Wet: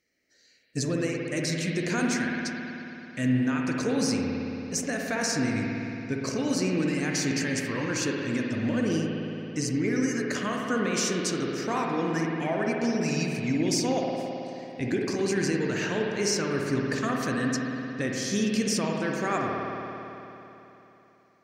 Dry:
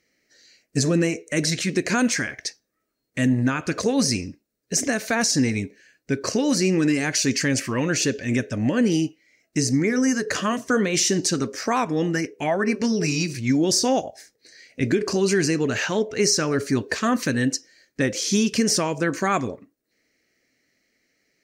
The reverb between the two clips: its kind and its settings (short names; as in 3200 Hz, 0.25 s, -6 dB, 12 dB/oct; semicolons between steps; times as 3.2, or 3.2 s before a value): spring tank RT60 3.3 s, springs 55 ms, chirp 60 ms, DRR -1 dB; gain -8 dB